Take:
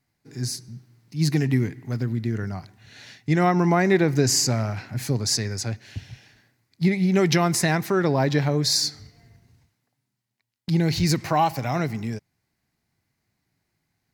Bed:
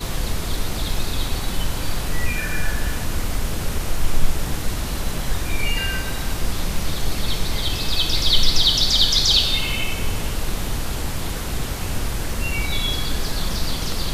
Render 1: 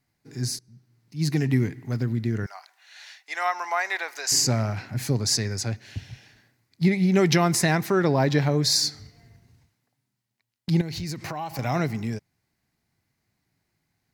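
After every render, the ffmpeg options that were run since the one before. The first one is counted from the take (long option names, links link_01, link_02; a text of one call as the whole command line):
ffmpeg -i in.wav -filter_complex "[0:a]asettb=1/sr,asplit=3[link_01][link_02][link_03];[link_01]atrim=end=2.464[link_04];[link_02]atrim=start=2.46:end=4.32,asetpts=PTS-STARTPTS,afade=type=in:duration=0.004:curve=qsin,afade=type=out:start_time=1.856:duration=0.004:curve=qsin,highpass=frequency=770:width=0.5412,highpass=frequency=770:width=1.3066[link_05];[link_03]atrim=start=4.316[link_06];[link_04][link_05]acrossfade=duration=0.004:curve1=hsin:curve2=qsin[link_07];[link_07][link_06]acrossfade=duration=0.004:curve1=qsin:curve2=hsin,asettb=1/sr,asplit=3[link_08][link_09][link_10];[link_08]atrim=end=10.814[link_11];[link_09]atrim=start=10.81:end=11.59,asetpts=PTS-STARTPTS,afade=type=in:duration=0.004:curve=qsin,afade=type=out:start_time=0.776:duration=0.004:curve=qsin,acompressor=threshold=-29dB:ratio=6:attack=3.2:release=140:knee=1:detection=peak[link_12];[link_10]atrim=start=11.586[link_13];[link_11][link_12]acrossfade=duration=0.004:curve1=hsin:curve2=qsin[link_14];[link_14][link_13]acrossfade=duration=0.004:curve1=qsin:curve2=hsin,asplit=2[link_15][link_16];[link_15]atrim=end=0.59,asetpts=PTS-STARTPTS,afade=type=out:start_time=0.586:duration=0.004:curve=hsin:silence=0.133352[link_17];[link_16]atrim=start=0.59,asetpts=PTS-STARTPTS,afade=type=in:duration=1.02:silence=0.133352[link_18];[link_17][link_18]concat=n=2:v=0:a=1" out.wav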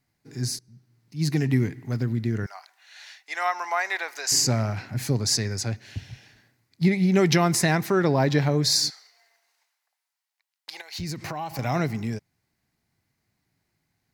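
ffmpeg -i in.wav -filter_complex "[0:a]asettb=1/sr,asplit=3[link_01][link_02][link_03];[link_01]atrim=end=8.904[link_04];[link_02]atrim=start=8.9:end=10.99,asetpts=PTS-STARTPTS,afade=type=in:duration=0.004:curve=qsin,afade=type=out:start_time=2.086:duration=0.004:curve=qsin,highpass=frequency=730:width=0.5412,highpass=frequency=730:width=1.3066[link_05];[link_03]atrim=start=10.986[link_06];[link_04][link_05]acrossfade=duration=0.004:curve1=hsin:curve2=qsin[link_07];[link_07][link_06]acrossfade=duration=0.004:curve1=qsin:curve2=hsin" out.wav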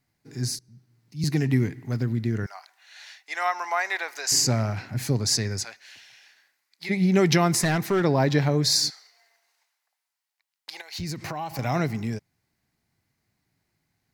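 ffmpeg -i in.wav -filter_complex "[0:a]asettb=1/sr,asplit=3[link_01][link_02][link_03];[link_01]atrim=end=0.554[link_04];[link_02]atrim=start=0.55:end=1.24,asetpts=PTS-STARTPTS,afade=type=in:duration=0.004:curve=qsin,afade=type=out:start_time=0.686:duration=0.004:curve=qsin,acrossover=split=210|3000[link_05][link_06][link_07];[link_06]acompressor=threshold=-57dB:ratio=2:attack=3.2:release=140:knee=2.83:detection=peak[link_08];[link_05][link_08][link_07]amix=inputs=3:normalize=0[link_09];[link_03]atrim=start=1.236[link_10];[link_04][link_09]acrossfade=duration=0.004:curve1=hsin:curve2=qsin[link_11];[link_11][link_10]acrossfade=duration=0.004:curve1=qsin:curve2=hsin,asplit=3[link_12][link_13][link_14];[link_12]afade=type=out:start_time=5.63:duration=0.02[link_15];[link_13]highpass=1000,afade=type=in:start_time=5.63:duration=0.02,afade=type=out:start_time=6.89:duration=0.02[link_16];[link_14]afade=type=in:start_time=6.89:duration=0.02[link_17];[link_15][link_16][link_17]amix=inputs=3:normalize=0,asettb=1/sr,asplit=3[link_18][link_19][link_20];[link_18]atrim=end=7.634[link_21];[link_19]atrim=start=7.63:end=8.03,asetpts=PTS-STARTPTS,afade=type=in:duration=0.004:curve=qsin,afade=type=out:start_time=0.396:duration=0.004:curve=qsin,volume=17.5dB,asoftclip=hard,volume=-17.5dB[link_22];[link_20]atrim=start=8.026[link_23];[link_21][link_22]acrossfade=duration=0.004:curve1=hsin:curve2=qsin[link_24];[link_24][link_23]acrossfade=duration=0.004:curve1=qsin:curve2=hsin" out.wav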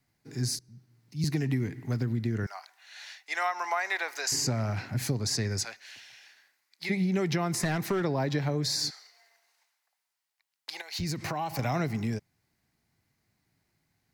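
ffmpeg -i in.wav -filter_complex "[0:a]acrossover=split=330|830|2400[link_01][link_02][link_03][link_04];[link_04]alimiter=limit=-18dB:level=0:latency=1:release=185[link_05];[link_01][link_02][link_03][link_05]amix=inputs=4:normalize=0,acompressor=threshold=-25dB:ratio=6" out.wav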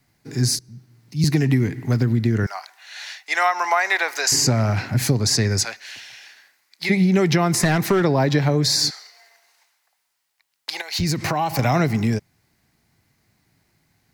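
ffmpeg -i in.wav -af "volume=10.5dB" out.wav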